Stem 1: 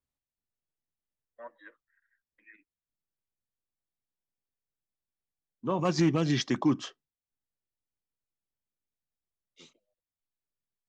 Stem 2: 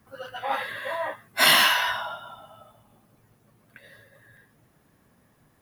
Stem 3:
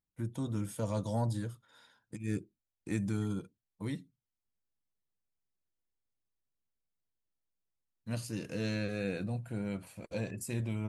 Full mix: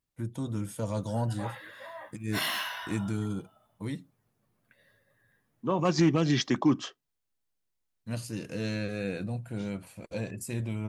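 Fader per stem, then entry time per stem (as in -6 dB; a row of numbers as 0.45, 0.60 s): +1.5, -14.0, +2.0 dB; 0.00, 0.95, 0.00 s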